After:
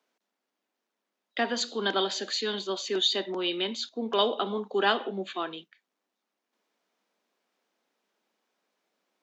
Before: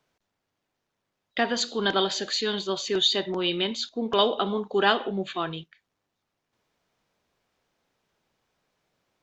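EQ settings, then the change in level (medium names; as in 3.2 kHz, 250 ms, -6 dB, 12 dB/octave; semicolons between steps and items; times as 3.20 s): steep high-pass 200 Hz 48 dB/octave; -3.0 dB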